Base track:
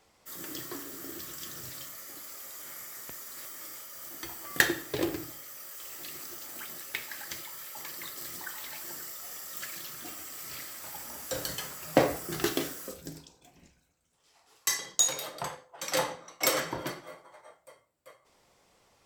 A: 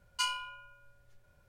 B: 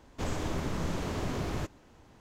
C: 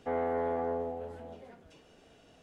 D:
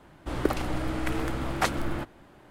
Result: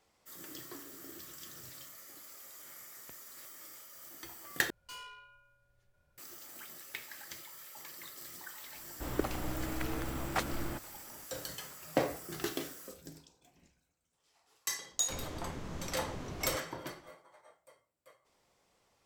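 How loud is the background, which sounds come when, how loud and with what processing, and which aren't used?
base track −7.5 dB
0:04.70: overwrite with A −5.5 dB + tube saturation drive 39 dB, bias 0.4
0:08.74: mix in D −7.5 dB
0:14.91: mix in B −9.5 dB
not used: C

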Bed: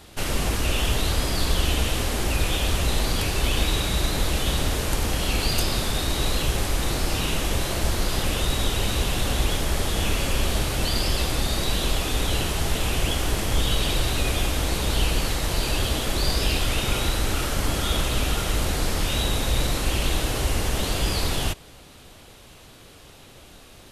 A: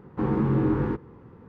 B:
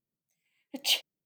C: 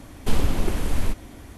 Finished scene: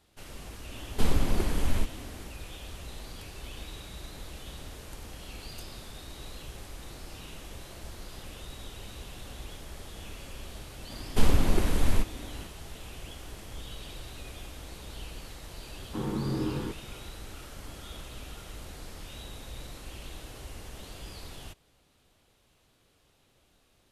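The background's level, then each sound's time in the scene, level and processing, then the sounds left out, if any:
bed −19.5 dB
0:00.72: mix in C −3.5 dB
0:10.90: mix in C −1 dB
0:15.76: mix in A −8 dB
not used: B

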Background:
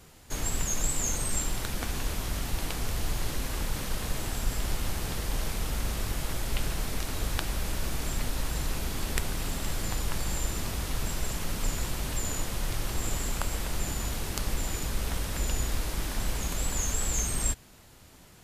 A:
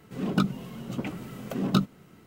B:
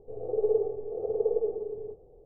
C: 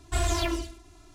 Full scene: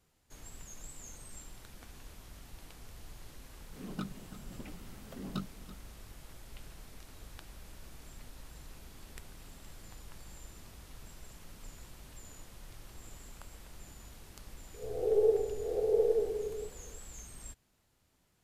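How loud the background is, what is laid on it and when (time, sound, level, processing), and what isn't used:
background −19.5 dB
0:03.61: mix in A −15 dB + single-tap delay 333 ms −15 dB
0:14.74: mix in B −2 dB + peak hold with a rise ahead of every peak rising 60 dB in 0.32 s
not used: C

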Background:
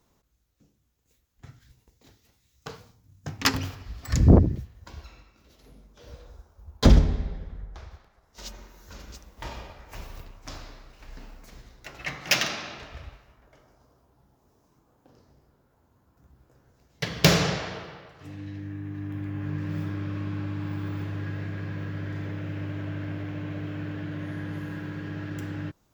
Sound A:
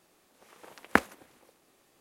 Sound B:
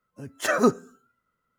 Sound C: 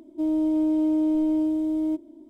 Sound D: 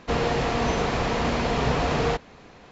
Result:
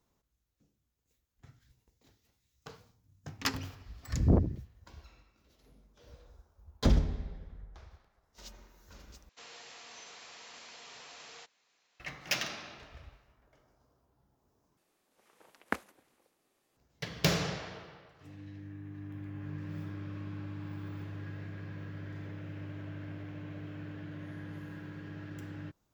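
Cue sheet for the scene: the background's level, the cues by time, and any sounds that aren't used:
background −9.5 dB
0:09.29: overwrite with D −10.5 dB + first difference
0:14.77: overwrite with A −10.5 dB
not used: B, C

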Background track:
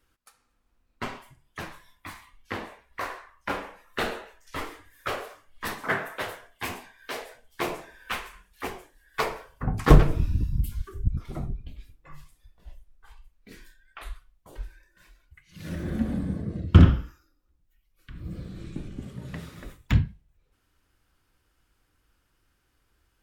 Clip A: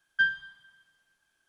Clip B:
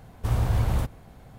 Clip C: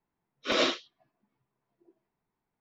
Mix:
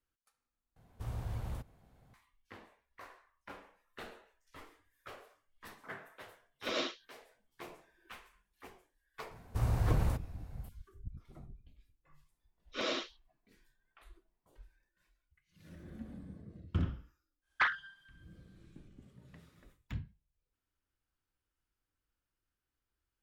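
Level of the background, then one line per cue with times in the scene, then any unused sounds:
background track −19.5 dB
0:00.76: overwrite with B −16 dB
0:06.17: mix in C −9.5 dB
0:09.31: mix in B −7.5 dB + parametric band 3,300 Hz −5.5 dB 0.25 octaves
0:12.29: mix in C −7.5 dB + brickwall limiter −17.5 dBFS
0:17.41: mix in A −5.5 dB, fades 0.10 s + highs frequency-modulated by the lows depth 0.51 ms

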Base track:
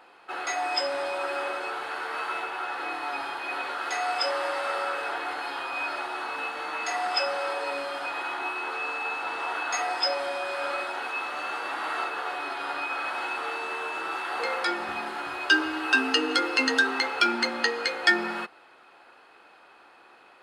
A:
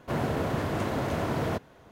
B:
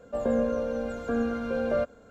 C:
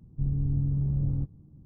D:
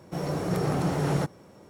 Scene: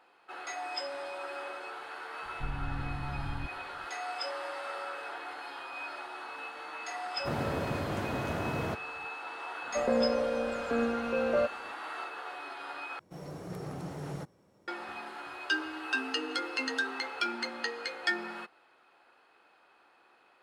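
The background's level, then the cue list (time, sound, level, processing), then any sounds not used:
base track −9.5 dB
0:02.22: mix in C −8 dB + comb filter 3.4 ms, depth 52%
0:07.17: mix in A −5 dB
0:09.62: mix in B + low-shelf EQ 180 Hz −10.5 dB
0:12.99: overwrite with D −13.5 dB

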